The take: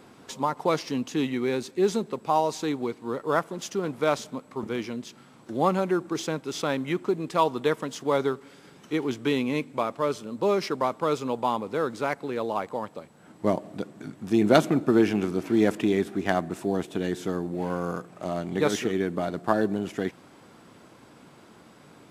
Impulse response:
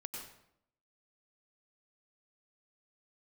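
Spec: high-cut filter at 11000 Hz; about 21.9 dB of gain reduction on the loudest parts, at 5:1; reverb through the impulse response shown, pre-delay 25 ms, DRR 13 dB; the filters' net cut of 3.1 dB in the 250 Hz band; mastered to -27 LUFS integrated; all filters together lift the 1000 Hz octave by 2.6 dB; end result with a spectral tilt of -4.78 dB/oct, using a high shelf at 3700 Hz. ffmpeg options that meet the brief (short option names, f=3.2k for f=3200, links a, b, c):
-filter_complex "[0:a]lowpass=11k,equalizer=f=250:t=o:g=-4.5,equalizer=f=1k:t=o:g=4,highshelf=f=3.7k:g=-6.5,acompressor=threshold=-40dB:ratio=5,asplit=2[a][b];[1:a]atrim=start_sample=2205,adelay=25[c];[b][c]afir=irnorm=-1:irlink=0,volume=-11dB[d];[a][d]amix=inputs=2:normalize=0,volume=16.5dB"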